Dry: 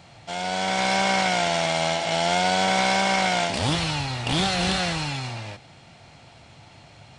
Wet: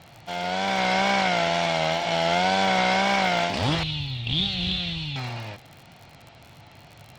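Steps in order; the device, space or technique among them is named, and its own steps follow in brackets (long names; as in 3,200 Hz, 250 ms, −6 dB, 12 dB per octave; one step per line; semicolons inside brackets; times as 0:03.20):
lo-fi chain (low-pass filter 4,800 Hz 12 dB per octave; tape wow and flutter; surface crackle 66 per second −34 dBFS)
0:03.83–0:05.16: drawn EQ curve 130 Hz 0 dB, 580 Hz −16 dB, 1,600 Hz −18 dB, 3,600 Hz +6 dB, 5,100 Hz −11 dB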